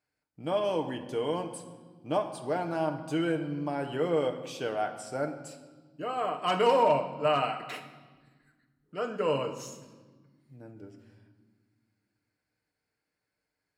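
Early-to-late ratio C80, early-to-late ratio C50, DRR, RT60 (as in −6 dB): 11.5 dB, 10.0 dB, 4.5 dB, 1.4 s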